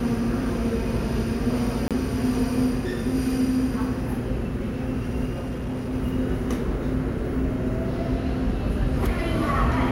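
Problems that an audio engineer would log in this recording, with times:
0:01.88–0:01.91: drop-out 27 ms
0:05.33–0:05.94: clipping −25.5 dBFS

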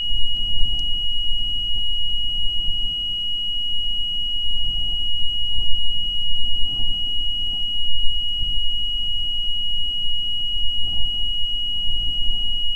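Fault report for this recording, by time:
whistle 2,900 Hz −22 dBFS

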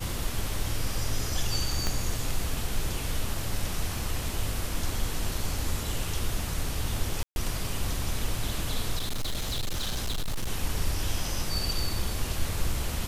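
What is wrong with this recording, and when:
0:01.87: click −13 dBFS
0:07.23–0:07.36: drop-out 131 ms
0:08.96–0:10.50: clipping −25.5 dBFS

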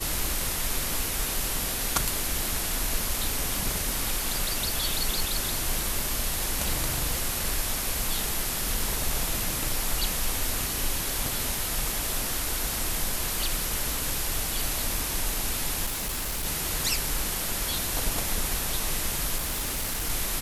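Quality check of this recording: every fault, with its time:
surface crackle 40 per second −34 dBFS
0:15.85–0:16.46: clipping −27 dBFS
0:19.36–0:20.10: clipping −25.5 dBFS

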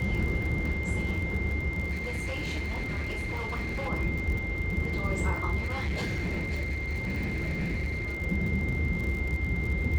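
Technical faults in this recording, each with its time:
surface crackle 69 per second −34 dBFS
whistle 2,100 Hz −34 dBFS
0:01.91–0:03.89: clipping −28.5 dBFS
0:05.59–0:08.17: clipping −27 dBFS

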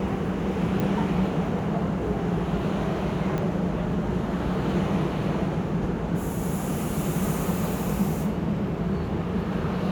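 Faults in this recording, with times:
0:00.80: click
0:03.38: click −17 dBFS

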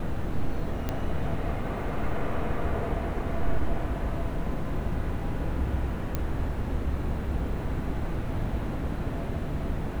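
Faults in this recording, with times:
0:00.89: click −15 dBFS
0:06.15: click −15 dBFS

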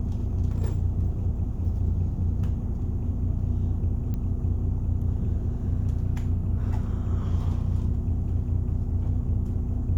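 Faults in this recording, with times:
0:04.14: click −21 dBFS

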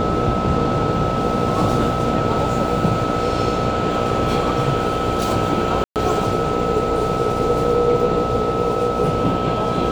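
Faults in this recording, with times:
mains buzz 60 Hz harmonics 13 −24 dBFS
whistle 1,300 Hz −24 dBFS
0:05.84–0:05.96: drop-out 118 ms

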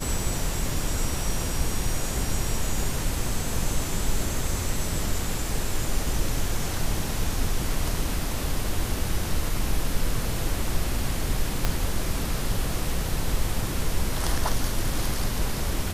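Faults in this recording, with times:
0:11.65: click −8 dBFS

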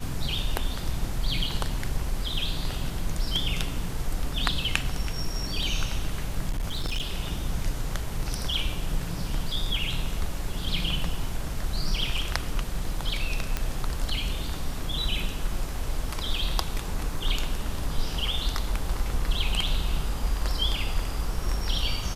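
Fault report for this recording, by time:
0:06.49–0:07.03: clipping −24 dBFS
0:13.57: click −12 dBFS

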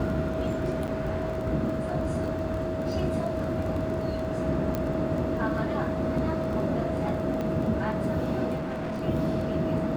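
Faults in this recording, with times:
surface crackle 15 per second −33 dBFS
whistle 640 Hz −32 dBFS
0:00.87–0:00.88: drop-out 8.2 ms
0:04.75: click −15 dBFS
0:07.41: click −20 dBFS
0:08.56–0:09.03: clipping −29 dBFS

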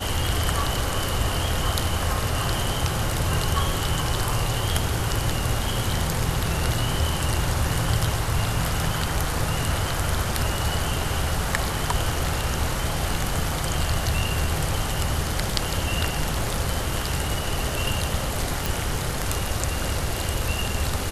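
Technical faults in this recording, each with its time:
0:18.66: click

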